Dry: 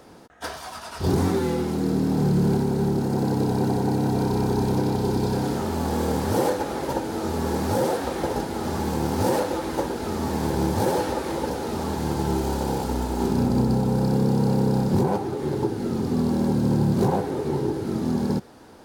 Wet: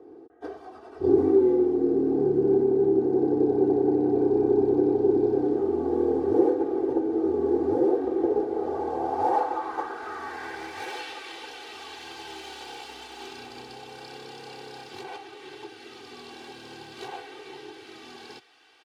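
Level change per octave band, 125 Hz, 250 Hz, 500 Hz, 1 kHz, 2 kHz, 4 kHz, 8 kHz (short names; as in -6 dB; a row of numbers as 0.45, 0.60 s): -18.0 dB, -3.5 dB, +2.0 dB, -4.0 dB, -4.0 dB, -5.5 dB, under -10 dB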